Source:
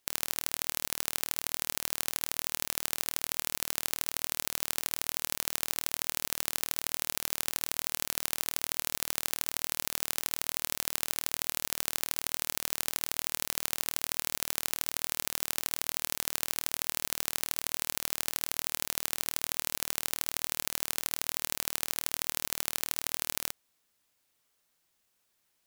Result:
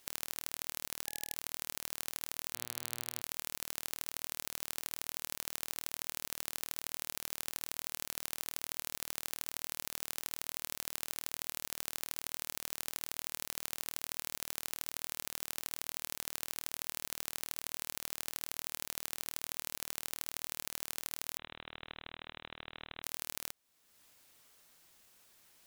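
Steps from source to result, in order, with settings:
0:02.54–0:03.20: hum with harmonics 120 Hz, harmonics 38, −57 dBFS −4 dB per octave
downward compressor 2 to 1, threshold −59 dBFS, peak gain reduction 18.5 dB
0:01.07–0:01.34: time-frequency box erased 820–1,700 Hz
0:21.37–0:23.03: voice inversion scrambler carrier 3,900 Hz
level +10.5 dB

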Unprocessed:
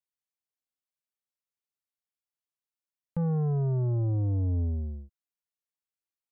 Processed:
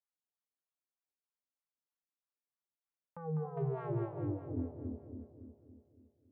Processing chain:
0:03.57–0:04.05: leveller curve on the samples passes 2
LFO wah 3.2 Hz 240–1,300 Hz, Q 2.3
echo with a time of its own for lows and highs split 660 Hz, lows 281 ms, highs 201 ms, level −4.5 dB
level +1 dB

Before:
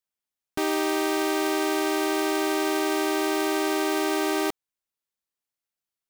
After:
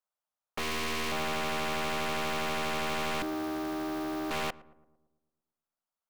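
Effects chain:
flat-topped bell 860 Hz +12 dB
0:00.59–0:01.12: leveller curve on the samples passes 1
0:03.22–0:04.31: graphic EQ with 10 bands 125 Hz +10 dB, 250 Hz +9 dB, 500 Hz −11 dB, 1,000 Hz −10 dB, 2,000 Hz −11 dB, 8,000 Hz −11 dB, 16,000 Hz −3 dB
wave folding −19.5 dBFS
on a send: feedback echo with a low-pass in the loop 113 ms, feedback 58%, low-pass 1,200 Hz, level −18.5 dB
on the sum: level −8 dB

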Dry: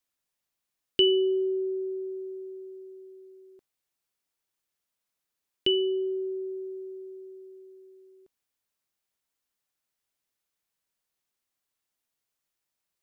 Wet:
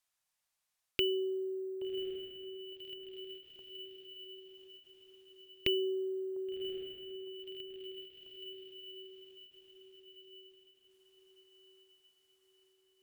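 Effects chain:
sample-and-hold tremolo 1.1 Hz
drawn EQ curve 120 Hz 0 dB, 340 Hz −8 dB, 750 Hz +4 dB
feedback delay with all-pass diffusion 1,115 ms, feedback 46%, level −8 dB
treble cut that deepens with the level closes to 1,700 Hz, closed at −41.5 dBFS
bad sample-rate conversion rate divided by 2×, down none, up hold
every ending faded ahead of time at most 140 dB per second
level +3 dB

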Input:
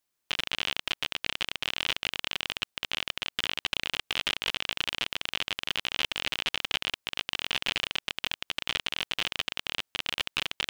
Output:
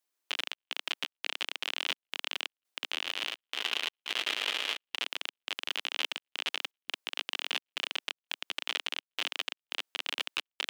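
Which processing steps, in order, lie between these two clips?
high-pass filter 280 Hz 24 dB per octave
0:02.83–0:04.96: echo machine with several playback heads 110 ms, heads first and second, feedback 53%, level −6.5 dB
gate pattern "xxx.xx.x" 85 BPM −60 dB
level −3 dB

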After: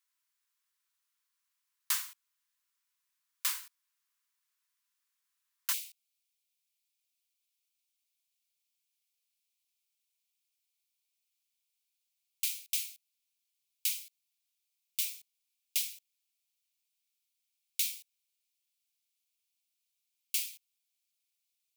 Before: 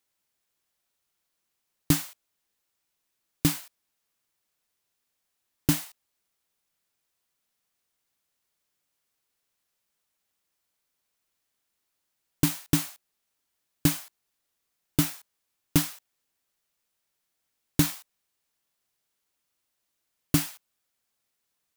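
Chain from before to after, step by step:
Chebyshev high-pass filter 980 Hz, order 5, from 0:05.72 2,300 Hz
level −3 dB

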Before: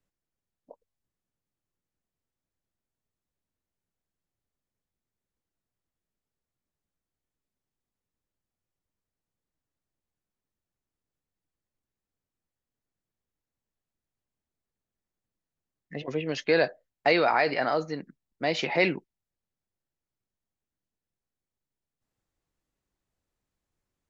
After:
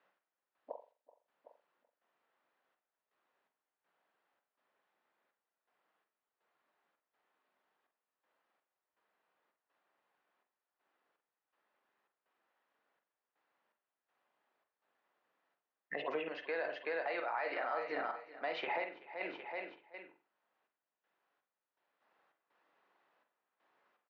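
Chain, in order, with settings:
high-pass filter 890 Hz 12 dB per octave
high-frequency loss of the air 330 metres
notch filter 2,200 Hz, Q 29
repeating echo 379 ms, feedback 33%, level −12.5 dB
gate pattern "x..xx..xxx.xxx" 82 BPM −12 dB
downward compressor 3 to 1, threshold −43 dBFS, peak gain reduction 13.5 dB
brickwall limiter −35.5 dBFS, peak gain reduction 10 dB
high-shelf EQ 2,400 Hz −12 dB
convolution reverb, pre-delay 42 ms, DRR 6.5 dB
multiband upward and downward compressor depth 40%
level +10.5 dB

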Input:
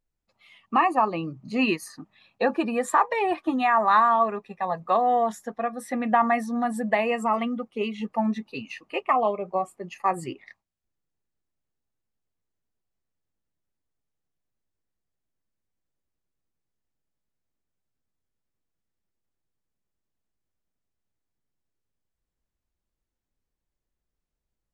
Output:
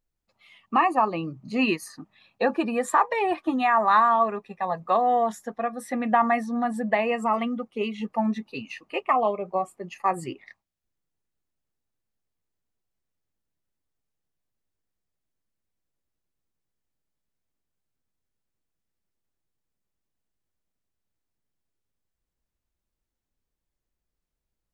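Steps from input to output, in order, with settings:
0:06.39–0:07.23: high-shelf EQ 8,300 Hz −10 dB

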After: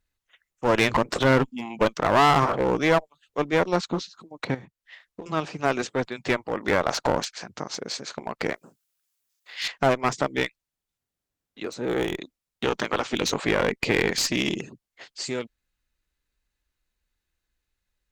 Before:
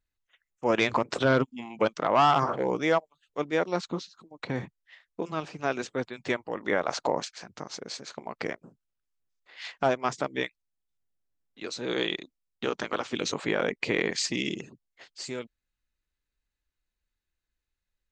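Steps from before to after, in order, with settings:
0:08.54–0:09.68: spectral tilt +3.5 dB per octave
asymmetric clip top −28.5 dBFS, bottom −13.5 dBFS
0:04.54–0:05.26: downward compressor 16 to 1, threshold −42 dBFS, peak gain reduction 15.5 dB
0:11.63–0:12.21: parametric band 4,300 Hz −12 dB 2 octaves
level +6 dB

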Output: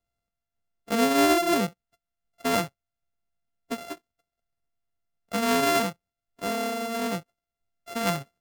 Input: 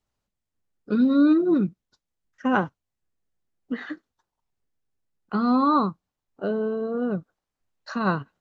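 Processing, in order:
samples sorted by size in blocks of 64 samples
level −3 dB

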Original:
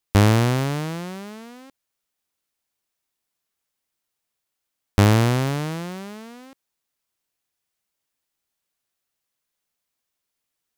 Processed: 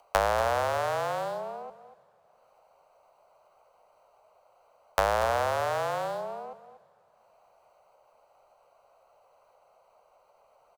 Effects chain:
adaptive Wiener filter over 25 samples
frequency shifter −37 Hz
low shelf with overshoot 390 Hz −11 dB, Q 3
downward compressor 3 to 1, threshold −35 dBFS, peak gain reduction 15 dB
single-tap delay 239 ms −14 dB
upward compression, threshold −53 dBFS
flat-topped bell 1,000 Hz +8 dB
dense smooth reverb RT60 2.8 s, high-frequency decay 0.95×, DRR 19.5 dB
level +3 dB

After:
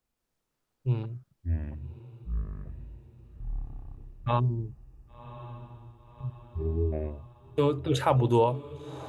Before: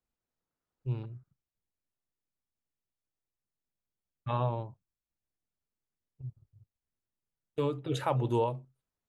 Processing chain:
delay with pitch and tempo change per echo 164 ms, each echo −7 semitones, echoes 3
gain on a spectral selection 0:04.39–0:06.92, 440–4,300 Hz −30 dB
feedback delay with all-pass diffusion 1,092 ms, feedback 55%, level −15 dB
level +6 dB

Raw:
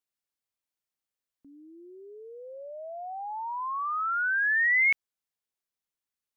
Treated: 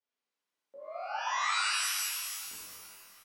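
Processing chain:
change of speed 1.96×
high-pass filter 210 Hz 24 dB per octave
soft clipping −31 dBFS, distortion −8 dB
downward compressor, threshold −35 dBFS, peak gain reduction 3.5 dB
treble cut that deepens with the level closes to 620 Hz, closed at −35 dBFS
high-frequency loss of the air 170 metres
repeating echo 421 ms, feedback 53%, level −19 dB
reverb with rising layers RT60 1.6 s, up +12 semitones, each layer −2 dB, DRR −9.5 dB

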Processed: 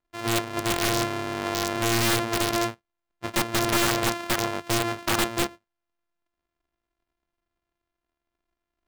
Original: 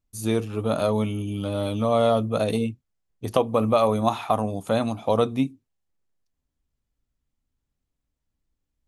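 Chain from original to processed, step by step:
samples sorted by size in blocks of 128 samples
mid-hump overdrive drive 12 dB, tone 2,800 Hz, clips at −2.5 dBFS
wrap-around overflow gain 12 dB
level −3 dB

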